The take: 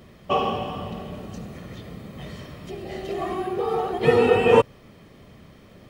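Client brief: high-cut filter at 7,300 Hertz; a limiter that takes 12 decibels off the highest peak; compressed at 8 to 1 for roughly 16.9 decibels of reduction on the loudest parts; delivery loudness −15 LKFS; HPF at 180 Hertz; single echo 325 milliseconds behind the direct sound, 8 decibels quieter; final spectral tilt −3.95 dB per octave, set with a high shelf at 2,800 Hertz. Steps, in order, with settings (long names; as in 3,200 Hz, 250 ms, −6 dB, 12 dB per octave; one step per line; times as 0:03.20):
high-pass filter 180 Hz
low-pass filter 7,300 Hz
high-shelf EQ 2,800 Hz +4 dB
downward compressor 8 to 1, threshold −30 dBFS
brickwall limiter −32.5 dBFS
single-tap delay 325 ms −8 dB
level +26 dB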